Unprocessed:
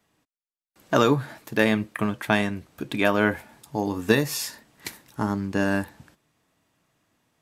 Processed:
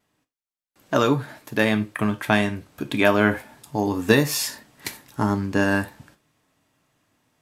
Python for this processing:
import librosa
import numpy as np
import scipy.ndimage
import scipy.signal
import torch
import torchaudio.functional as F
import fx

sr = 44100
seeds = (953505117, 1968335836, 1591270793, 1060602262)

y = fx.vibrato(x, sr, rate_hz=0.55, depth_cents=5.2)
y = fx.rider(y, sr, range_db=4, speed_s=2.0)
y = fx.rev_gated(y, sr, seeds[0], gate_ms=110, shape='falling', drr_db=9.0)
y = y * librosa.db_to_amplitude(1.5)